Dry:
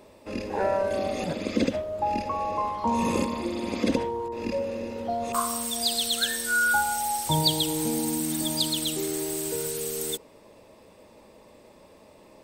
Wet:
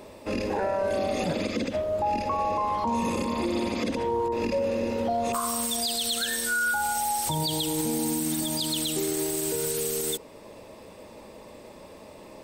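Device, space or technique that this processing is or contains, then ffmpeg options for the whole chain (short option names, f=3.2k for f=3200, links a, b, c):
stacked limiters: -af "alimiter=limit=-16.5dB:level=0:latency=1:release=168,alimiter=limit=-20dB:level=0:latency=1:release=471,alimiter=level_in=1.5dB:limit=-24dB:level=0:latency=1:release=37,volume=-1.5dB,volume=6.5dB"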